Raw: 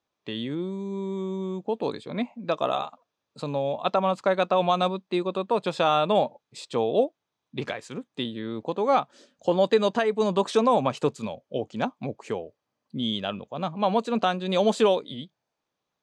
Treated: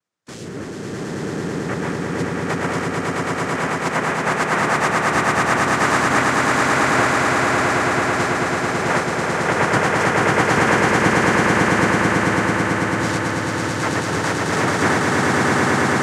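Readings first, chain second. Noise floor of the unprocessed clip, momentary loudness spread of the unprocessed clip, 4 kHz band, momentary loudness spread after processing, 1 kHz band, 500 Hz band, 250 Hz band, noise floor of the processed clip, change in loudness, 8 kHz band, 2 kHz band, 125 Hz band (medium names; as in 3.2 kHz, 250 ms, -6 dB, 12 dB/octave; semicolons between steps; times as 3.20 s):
-84 dBFS, 14 LU, +6.0 dB, 8 LU, +9.0 dB, +3.0 dB, +8.5 dB, -29 dBFS, +8.0 dB, +20.5 dB, +20.5 dB, +12.5 dB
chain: noise-vocoded speech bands 3; echo with a slow build-up 110 ms, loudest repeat 8, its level -3 dB; trim -1 dB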